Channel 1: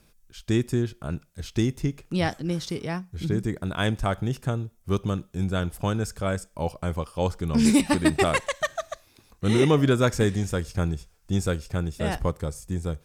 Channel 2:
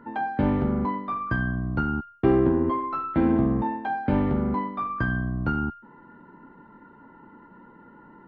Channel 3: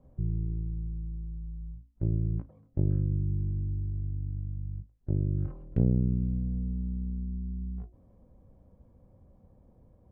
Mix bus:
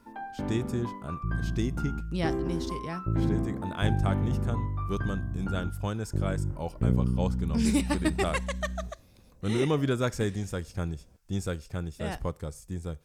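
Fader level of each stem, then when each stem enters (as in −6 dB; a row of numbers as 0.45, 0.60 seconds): −6.5, −11.0, −0.5 decibels; 0.00, 0.00, 1.05 seconds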